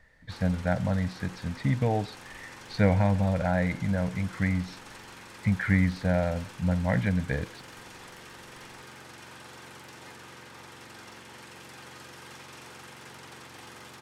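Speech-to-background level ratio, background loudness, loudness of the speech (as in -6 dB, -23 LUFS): 18.0 dB, -46.0 LUFS, -28.0 LUFS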